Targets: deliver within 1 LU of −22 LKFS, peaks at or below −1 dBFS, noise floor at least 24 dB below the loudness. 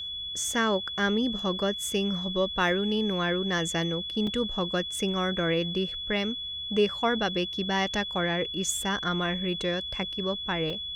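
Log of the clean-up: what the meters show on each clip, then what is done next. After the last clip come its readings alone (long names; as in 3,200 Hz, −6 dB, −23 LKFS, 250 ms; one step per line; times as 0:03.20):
number of dropouts 2; longest dropout 3.1 ms; interfering tone 3,400 Hz; level of the tone −33 dBFS; integrated loudness −27.5 LKFS; sample peak −12.0 dBFS; target loudness −22.0 LKFS
→ repair the gap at 0:04.27/0:10.70, 3.1 ms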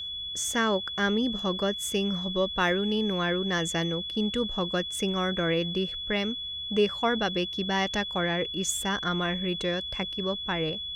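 number of dropouts 0; interfering tone 3,400 Hz; level of the tone −33 dBFS
→ notch filter 3,400 Hz, Q 30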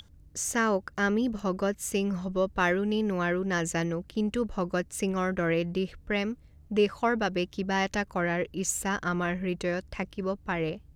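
interfering tone none found; integrated loudness −29.0 LKFS; sample peak −12.5 dBFS; target loudness −22.0 LKFS
→ level +7 dB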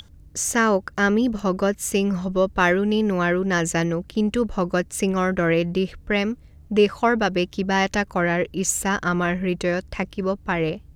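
integrated loudness −22.0 LKFS; sample peak −5.5 dBFS; background noise floor −48 dBFS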